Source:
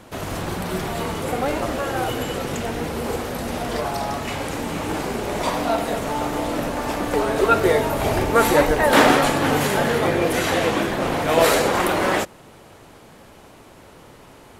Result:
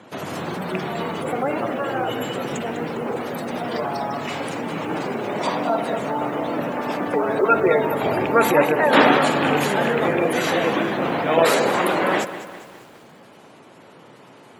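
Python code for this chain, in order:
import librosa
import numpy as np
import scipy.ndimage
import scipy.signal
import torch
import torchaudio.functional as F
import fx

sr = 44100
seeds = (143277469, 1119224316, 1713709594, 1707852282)

y = fx.rattle_buzz(x, sr, strikes_db=-20.0, level_db=-12.0)
y = scipy.signal.sosfilt(scipy.signal.butter(4, 130.0, 'highpass', fs=sr, output='sos'), y)
y = fx.spec_gate(y, sr, threshold_db=-25, keep='strong')
y = fx.echo_crushed(y, sr, ms=202, feedback_pct=55, bits=7, wet_db=-13)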